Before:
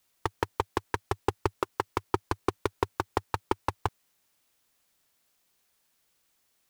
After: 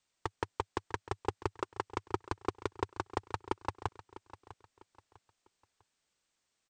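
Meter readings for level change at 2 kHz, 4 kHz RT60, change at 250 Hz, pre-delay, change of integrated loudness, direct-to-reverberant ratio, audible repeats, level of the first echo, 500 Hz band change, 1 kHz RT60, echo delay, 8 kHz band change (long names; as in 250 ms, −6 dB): −6.5 dB, no reverb audible, −6.5 dB, no reverb audible, −6.5 dB, no reverb audible, 2, −16.0 dB, −6.5 dB, no reverb audible, 650 ms, −7.0 dB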